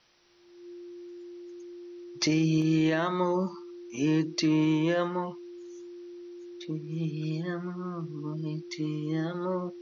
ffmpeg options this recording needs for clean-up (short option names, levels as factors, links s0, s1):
-af "bandreject=f=350:w=30,agate=range=0.0891:threshold=0.0158"